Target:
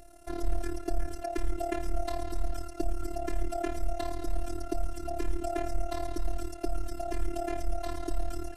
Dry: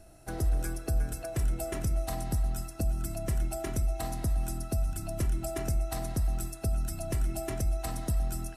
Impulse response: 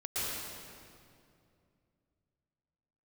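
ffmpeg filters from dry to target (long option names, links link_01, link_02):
-filter_complex "[0:a]tremolo=f=36:d=0.857,afftfilt=real='hypot(re,im)*cos(PI*b)':imag='0':win_size=512:overlap=0.75,acrossover=split=5700[link_01][link_02];[link_02]acompressor=threshold=-58dB:ratio=4:attack=1:release=60[link_03];[link_01][link_03]amix=inputs=2:normalize=0,volume=8dB"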